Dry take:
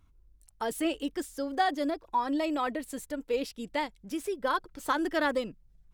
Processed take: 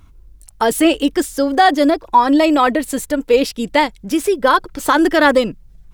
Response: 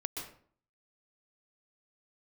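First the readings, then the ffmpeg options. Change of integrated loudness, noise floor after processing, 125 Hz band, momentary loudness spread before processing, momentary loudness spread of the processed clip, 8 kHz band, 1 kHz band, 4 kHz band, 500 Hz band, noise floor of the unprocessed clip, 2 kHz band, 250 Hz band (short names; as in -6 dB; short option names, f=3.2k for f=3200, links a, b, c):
+16.5 dB, -46 dBFS, n/a, 8 LU, 7 LU, +17.0 dB, +16.0 dB, +16.5 dB, +16.5 dB, -63 dBFS, +16.0 dB, +17.0 dB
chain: -af "alimiter=level_in=18dB:limit=-1dB:release=50:level=0:latency=1,volume=-1dB"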